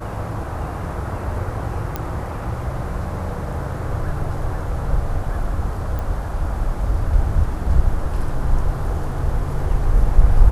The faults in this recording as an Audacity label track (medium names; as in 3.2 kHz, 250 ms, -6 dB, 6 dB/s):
1.960000	1.960000	pop -10 dBFS
5.990000	5.990000	pop